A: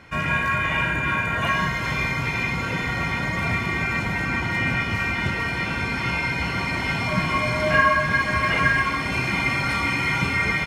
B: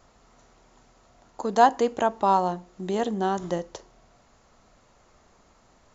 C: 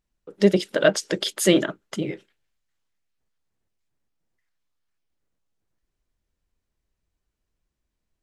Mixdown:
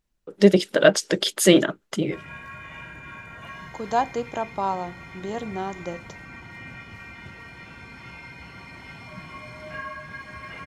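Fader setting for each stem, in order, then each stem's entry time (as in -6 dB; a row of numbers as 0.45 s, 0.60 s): -17.5 dB, -5.0 dB, +2.5 dB; 2.00 s, 2.35 s, 0.00 s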